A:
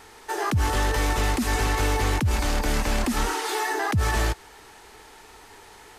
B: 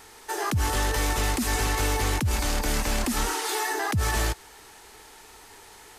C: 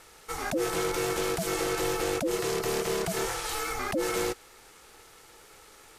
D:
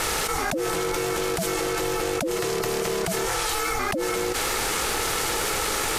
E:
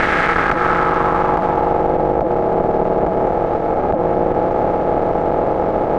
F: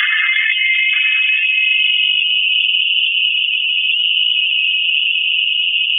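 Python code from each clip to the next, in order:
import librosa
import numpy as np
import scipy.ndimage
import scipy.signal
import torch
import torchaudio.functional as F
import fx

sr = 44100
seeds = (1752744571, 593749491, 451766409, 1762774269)

y1 = fx.high_shelf(x, sr, hz=4800.0, db=7.5)
y1 = y1 * 10.0 ** (-2.5 / 20.0)
y2 = y1 * np.sin(2.0 * np.pi * 420.0 * np.arange(len(y1)) / sr)
y2 = y2 * 10.0 ** (-1.5 / 20.0)
y3 = fx.env_flatten(y2, sr, amount_pct=100)
y4 = fx.bin_compress(y3, sr, power=0.2)
y4 = fx.cheby_harmonics(y4, sr, harmonics=(8,), levels_db=(-15,), full_scale_db=-2.0)
y4 = fx.filter_sweep_lowpass(y4, sr, from_hz=1800.0, to_hz=680.0, start_s=0.2, end_s=1.97, q=2.1)
y5 = fx.spec_expand(y4, sr, power=2.9)
y5 = y5 + 10.0 ** (-11.0 / 20.0) * np.pad(y5, (int(929 * sr / 1000.0), 0))[:len(y5)]
y5 = fx.freq_invert(y5, sr, carrier_hz=3400)
y5 = y5 * 10.0 ** (1.5 / 20.0)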